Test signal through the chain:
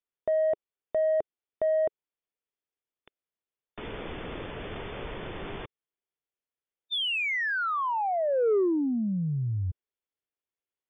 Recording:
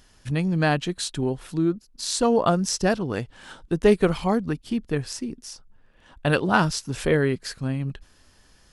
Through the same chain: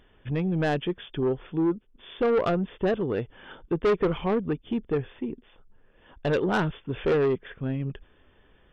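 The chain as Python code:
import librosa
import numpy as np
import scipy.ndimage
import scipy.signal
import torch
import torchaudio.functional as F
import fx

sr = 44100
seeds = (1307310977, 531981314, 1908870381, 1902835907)

y = fx.brickwall_lowpass(x, sr, high_hz=3600.0)
y = fx.peak_eq(y, sr, hz=420.0, db=8.0, octaves=0.75)
y = 10.0 ** (-16.0 / 20.0) * np.tanh(y / 10.0 ** (-16.0 / 20.0))
y = y * librosa.db_to_amplitude(-2.5)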